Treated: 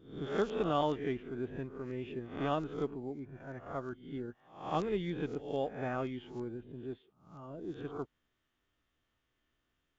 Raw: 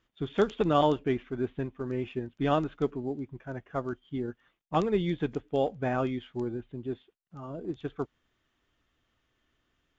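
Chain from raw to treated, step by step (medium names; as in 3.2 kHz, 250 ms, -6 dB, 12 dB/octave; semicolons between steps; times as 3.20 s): reverse spectral sustain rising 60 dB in 0.52 s; trim -8 dB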